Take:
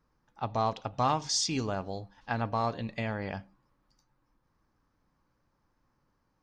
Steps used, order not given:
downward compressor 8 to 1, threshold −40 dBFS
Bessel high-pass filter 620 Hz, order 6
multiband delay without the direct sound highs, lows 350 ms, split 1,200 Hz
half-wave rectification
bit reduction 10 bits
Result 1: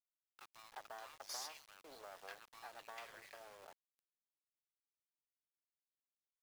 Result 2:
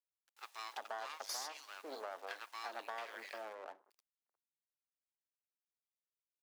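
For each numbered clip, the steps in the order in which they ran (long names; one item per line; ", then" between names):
downward compressor, then multiband delay without the direct sound, then half-wave rectification, then Bessel high-pass filter, then bit reduction
bit reduction, then multiband delay without the direct sound, then half-wave rectification, then Bessel high-pass filter, then downward compressor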